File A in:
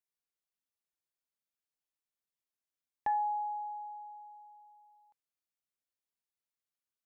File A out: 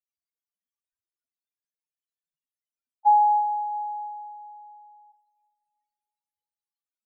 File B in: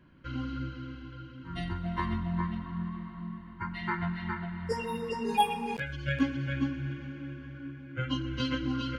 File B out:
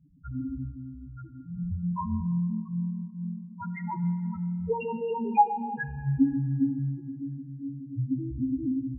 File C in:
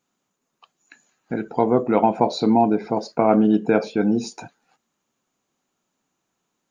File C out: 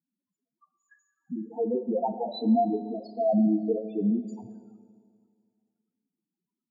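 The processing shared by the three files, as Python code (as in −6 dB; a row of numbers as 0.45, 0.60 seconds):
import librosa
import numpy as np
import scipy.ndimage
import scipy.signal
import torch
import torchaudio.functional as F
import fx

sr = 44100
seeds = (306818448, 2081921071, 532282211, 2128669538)

y = fx.spec_topn(x, sr, count=2)
y = fx.rev_schroeder(y, sr, rt60_s=2.1, comb_ms=25, drr_db=11.5)
y = y * 10.0 ** (-30 / 20.0) / np.sqrt(np.mean(np.square(y)))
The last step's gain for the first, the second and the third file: +15.5, +6.5, −2.5 decibels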